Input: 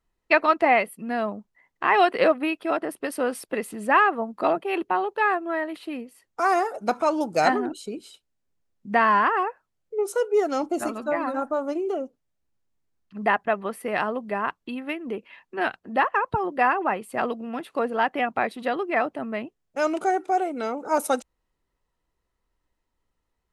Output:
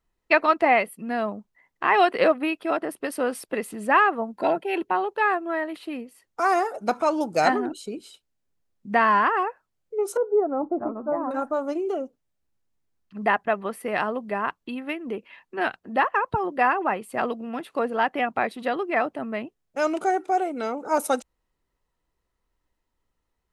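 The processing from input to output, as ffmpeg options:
-filter_complex "[0:a]asettb=1/sr,asplit=3[a][b][c];[a]atrim=end=4.324[d];[b]atrim=start=4.32:end=4.91,asetpts=PTS-STARTPTS,afade=t=in:d=0.004:c=qsin,afade=t=out:st=0.586:d=0.004:c=qsin,asuperstop=centerf=1200:order=12:qfactor=5.6[e];[c]atrim=start=4.906[f];[d][e]acrossfade=d=0.004:c1=hsin:c2=qsin[g];[g][f]acrossfade=d=0.004:c1=qsin:c2=hsin,asettb=1/sr,asplit=3[h][i][j];[h]atrim=end=10.174[k];[i]atrim=start=10.17:end=11.31,asetpts=PTS-STARTPTS,afade=t=in:d=0.004:c=qsin,afade=t=out:st=1.136:d=0.004:c=qsin,lowpass=f=1.1k:w=0.5412,lowpass=f=1.1k:w=1.3066[l];[j]atrim=start=11.306[m];[k][l]acrossfade=d=0.004:c1=hsin:c2=qsin[n];[n][m]acrossfade=d=0.004:c1=qsin:c2=hsin"

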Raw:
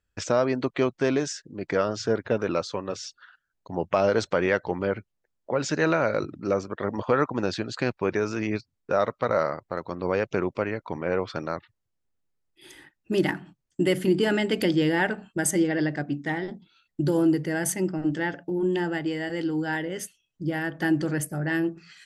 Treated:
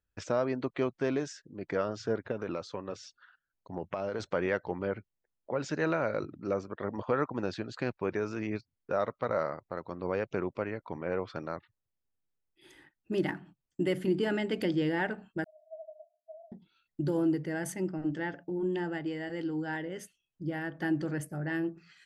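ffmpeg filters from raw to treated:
-filter_complex "[0:a]asettb=1/sr,asplit=3[a][b][c];[a]atrim=end=2.314[d];[b]atrim=start=2.31:end=4.2,asetpts=PTS-STARTPTS,afade=t=in:d=0.004:c=qsin,afade=t=out:st=1.886:d=0.004:c=qsin,acompressor=threshold=-23dB:ratio=6:attack=3.2:release=140:knee=1:detection=peak[e];[c]atrim=start=4.196[f];[d][e]acrossfade=d=0.004:c1=hsin:c2=qsin[g];[g][f]acrossfade=d=0.004:c1=qsin:c2=hsin,asettb=1/sr,asplit=3[h][i][j];[h]atrim=end=15.444[k];[i]atrim=start=15.44:end=16.52,asetpts=PTS-STARTPTS,afade=t=in:d=0.004:c=qsin,afade=t=out:st=1.076:d=0.004:c=qsin,asuperpass=centerf=650:order=20:qfactor=7.2[l];[j]atrim=start=16.516[m];[k][l]acrossfade=d=0.004:c1=hsin:c2=qsin[n];[n][m]acrossfade=d=0.004:c1=qsin:c2=hsin,highshelf=f=3.9k:g=-8,volume=-6.5dB"

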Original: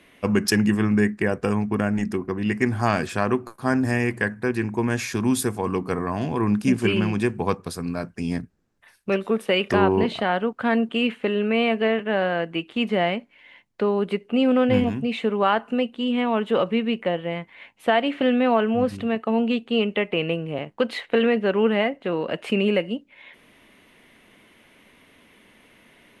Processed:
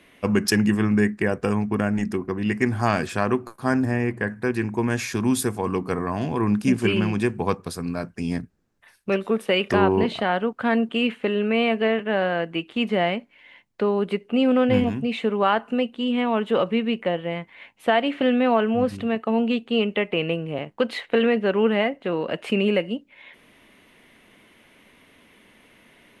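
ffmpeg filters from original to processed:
-filter_complex "[0:a]asettb=1/sr,asplit=3[a][b][c];[a]atrim=end=3.854[d];[b]atrim=start=3.85:end=4.28,asetpts=PTS-STARTPTS,afade=t=in:d=0.004:c=qsin,afade=t=out:st=0.426:d=0.004:c=qsin,highshelf=f=2.4k:g=-11.5[e];[c]atrim=start=4.276[f];[d][e]acrossfade=d=0.004:c1=hsin:c2=qsin[g];[g][f]acrossfade=d=0.004:c1=qsin:c2=hsin"

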